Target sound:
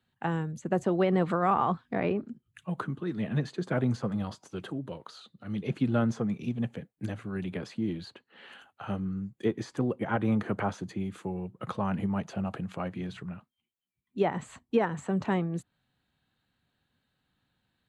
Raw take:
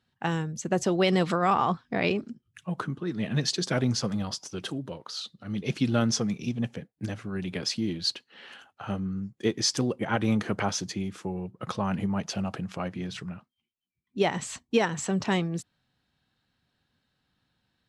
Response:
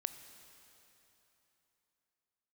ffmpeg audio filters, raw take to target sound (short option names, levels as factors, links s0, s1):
-filter_complex "[0:a]equalizer=f=5400:t=o:w=0.3:g=-13,acrossover=split=120|1400|1600[s0][s1][s2][s3];[s3]acompressor=threshold=0.00355:ratio=6[s4];[s0][s1][s2][s4]amix=inputs=4:normalize=0,volume=0.841"